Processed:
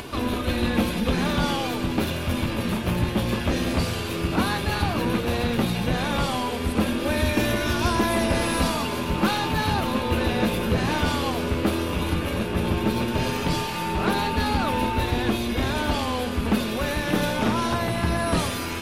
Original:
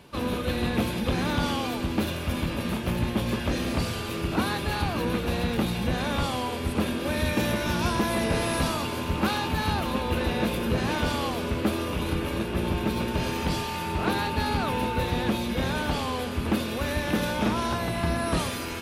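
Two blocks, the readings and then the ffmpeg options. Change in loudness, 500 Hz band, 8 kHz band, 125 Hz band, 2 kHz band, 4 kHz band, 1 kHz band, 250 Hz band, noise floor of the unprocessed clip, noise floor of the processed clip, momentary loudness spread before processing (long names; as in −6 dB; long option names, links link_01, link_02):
+3.0 dB, +3.0 dB, +3.0 dB, +3.0 dB, +3.0 dB, +3.0 dB, +3.0 dB, +3.0 dB, −32 dBFS, −29 dBFS, 3 LU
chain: -af "aeval=exprs='0.2*(cos(1*acos(clip(val(0)/0.2,-1,1)))-cos(1*PI/2))+0.00501*(cos(8*acos(clip(val(0)/0.2,-1,1)))-cos(8*PI/2))':channel_layout=same,acompressor=mode=upward:threshold=-29dB:ratio=2.5,flanger=delay=2.8:depth=8.6:regen=-47:speed=0.13:shape=sinusoidal,volume=7dB"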